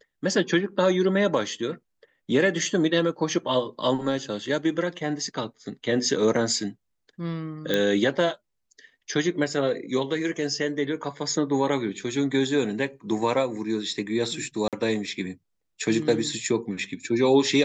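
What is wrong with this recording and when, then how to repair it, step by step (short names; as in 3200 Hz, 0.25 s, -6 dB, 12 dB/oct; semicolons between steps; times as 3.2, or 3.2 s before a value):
7.74 pop -10 dBFS
14.68–14.73 gap 47 ms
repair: de-click; interpolate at 14.68, 47 ms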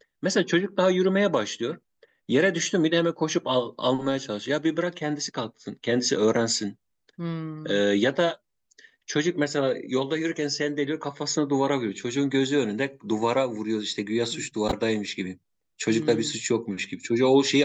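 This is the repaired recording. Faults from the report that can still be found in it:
none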